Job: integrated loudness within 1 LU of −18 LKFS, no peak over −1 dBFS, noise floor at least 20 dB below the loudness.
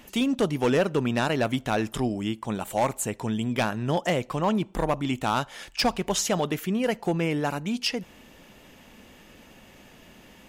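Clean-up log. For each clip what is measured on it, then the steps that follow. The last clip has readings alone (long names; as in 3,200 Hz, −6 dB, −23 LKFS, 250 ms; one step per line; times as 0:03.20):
share of clipped samples 0.7%; peaks flattened at −16.5 dBFS; integrated loudness −26.5 LKFS; sample peak −16.5 dBFS; target loudness −18.0 LKFS
→ clipped peaks rebuilt −16.5 dBFS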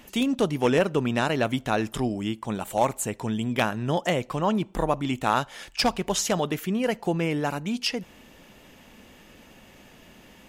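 share of clipped samples 0.0%; integrated loudness −26.0 LKFS; sample peak −7.5 dBFS; target loudness −18.0 LKFS
→ level +8 dB
brickwall limiter −1 dBFS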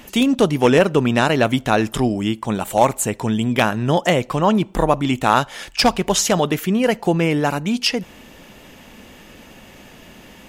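integrated loudness −18.5 LKFS; sample peak −1.0 dBFS; background noise floor −44 dBFS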